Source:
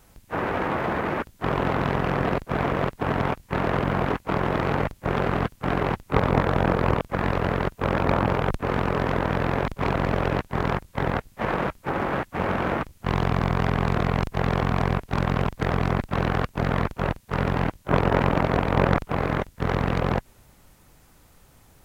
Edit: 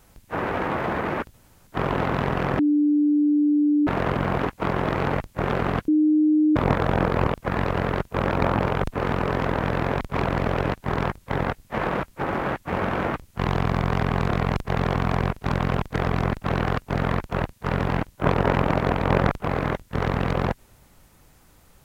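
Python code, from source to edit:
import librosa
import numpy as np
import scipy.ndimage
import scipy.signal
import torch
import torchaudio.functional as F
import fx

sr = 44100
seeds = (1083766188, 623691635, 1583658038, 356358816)

y = fx.edit(x, sr, fx.insert_room_tone(at_s=1.34, length_s=0.33),
    fx.bleep(start_s=2.26, length_s=1.28, hz=295.0, db=-16.0),
    fx.bleep(start_s=5.55, length_s=0.68, hz=306.0, db=-15.0), tone=tone)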